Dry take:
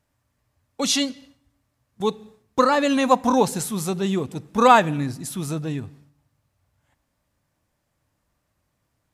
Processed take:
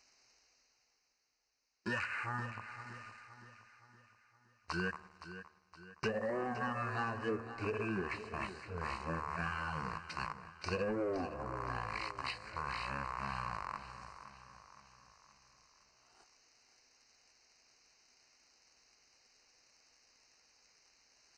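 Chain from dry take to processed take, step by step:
loose part that buzzes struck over −38 dBFS, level −25 dBFS
first-order pre-emphasis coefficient 0.97
hum removal 178.1 Hz, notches 20
treble cut that deepens with the level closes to 1,700 Hz, closed at −27.5 dBFS
reversed playback
upward compression, threshold −52 dBFS
reversed playback
leveller curve on the samples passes 2
downward compressor 6 to 1, threshold −37 dBFS, peak gain reduction 12.5 dB
on a send: repeating echo 221 ms, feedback 48%, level −12 dB
on the sum: wrong playback speed 78 rpm record played at 33 rpm
Butterworth band-reject 3,400 Hz, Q 2.4
level +2 dB

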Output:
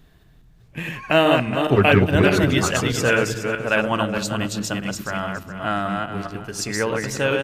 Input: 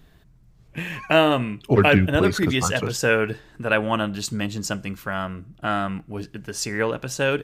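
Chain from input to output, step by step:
feedback delay that plays each chunk backwards 209 ms, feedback 42%, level −3 dB
far-end echo of a speakerphone 220 ms, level −20 dB

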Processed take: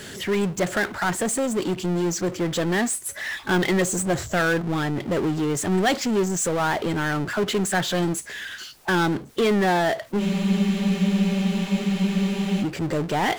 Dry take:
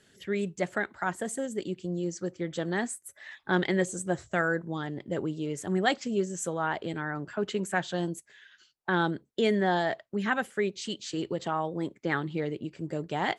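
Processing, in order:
power curve on the samples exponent 0.5
frozen spectrum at 0:10.21, 2.42 s

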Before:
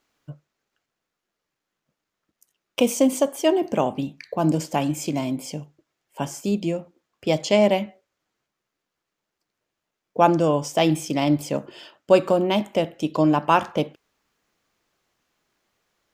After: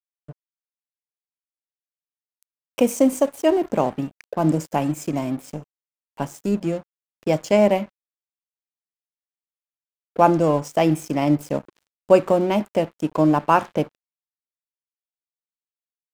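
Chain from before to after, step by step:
parametric band 3,700 Hz −13.5 dB 0.7 octaves
dead-zone distortion −40 dBFS
level +2 dB

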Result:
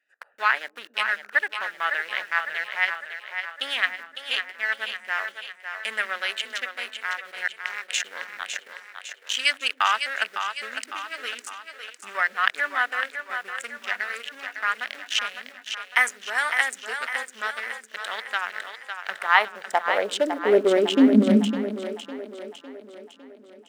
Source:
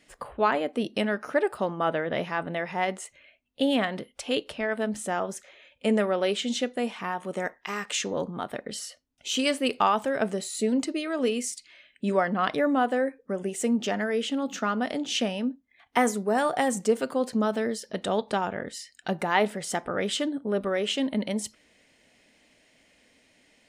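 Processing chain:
adaptive Wiener filter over 41 samples
in parallel at −4 dB: centre clipping without the shift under −41 dBFS
on the sum: high-pass filter sweep 1,700 Hz → 230 Hz, 0:19.00–0:21.12
echo with a time of its own for lows and highs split 340 Hz, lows 123 ms, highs 555 ms, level −7.5 dB
level +1 dB

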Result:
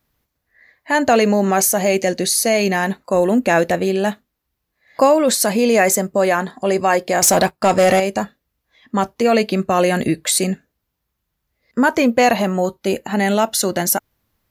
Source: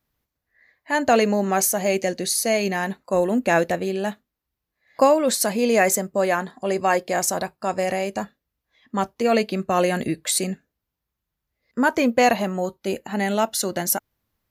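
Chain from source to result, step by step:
in parallel at +2 dB: brickwall limiter −16.5 dBFS, peak gain reduction 11 dB
0:07.22–0:08.00: on the sum: leveller curve on the samples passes 2

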